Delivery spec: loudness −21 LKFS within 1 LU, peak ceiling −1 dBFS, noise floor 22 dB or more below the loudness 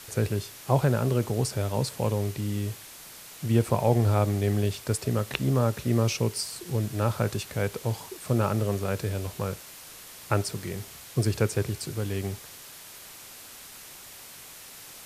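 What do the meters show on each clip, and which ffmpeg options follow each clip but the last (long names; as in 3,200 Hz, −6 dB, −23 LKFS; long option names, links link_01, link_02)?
background noise floor −46 dBFS; target noise floor −50 dBFS; integrated loudness −28.0 LKFS; sample peak −6.0 dBFS; target loudness −21.0 LKFS
→ -af "afftdn=noise_reduction=6:noise_floor=-46"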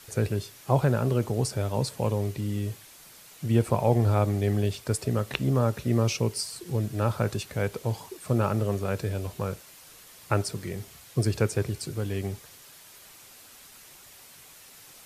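background noise floor −51 dBFS; integrated loudness −28.0 LKFS; sample peak −6.5 dBFS; target loudness −21.0 LKFS
→ -af "volume=7dB,alimiter=limit=-1dB:level=0:latency=1"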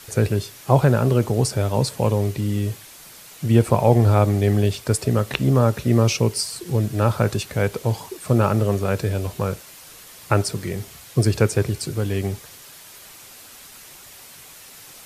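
integrated loudness −21.0 LKFS; sample peak −1.0 dBFS; background noise floor −44 dBFS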